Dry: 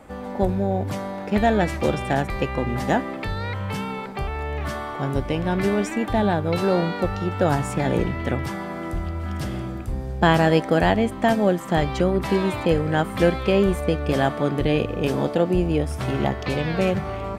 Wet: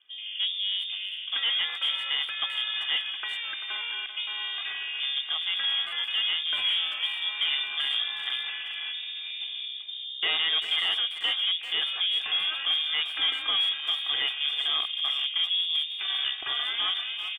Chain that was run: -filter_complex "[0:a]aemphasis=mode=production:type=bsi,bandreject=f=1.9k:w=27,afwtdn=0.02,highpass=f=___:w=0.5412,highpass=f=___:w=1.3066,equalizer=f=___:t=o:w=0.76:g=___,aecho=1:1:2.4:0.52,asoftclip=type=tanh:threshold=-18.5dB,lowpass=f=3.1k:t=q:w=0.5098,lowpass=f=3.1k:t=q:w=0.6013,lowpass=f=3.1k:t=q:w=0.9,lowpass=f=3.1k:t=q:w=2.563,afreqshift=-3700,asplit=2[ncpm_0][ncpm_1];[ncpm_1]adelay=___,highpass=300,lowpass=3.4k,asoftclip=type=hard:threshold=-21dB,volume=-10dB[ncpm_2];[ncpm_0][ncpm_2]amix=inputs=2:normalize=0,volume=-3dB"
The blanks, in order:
52, 52, 140, 7.5, 390